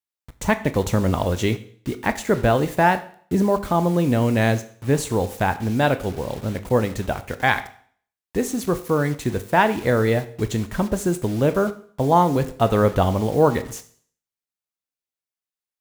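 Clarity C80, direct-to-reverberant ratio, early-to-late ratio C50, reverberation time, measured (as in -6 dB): 18.0 dB, 10.5 dB, 15.0 dB, 0.50 s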